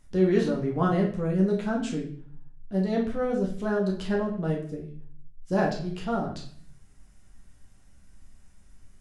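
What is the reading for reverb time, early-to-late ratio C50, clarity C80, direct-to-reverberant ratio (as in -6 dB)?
0.55 s, 7.5 dB, 12.0 dB, -1.5 dB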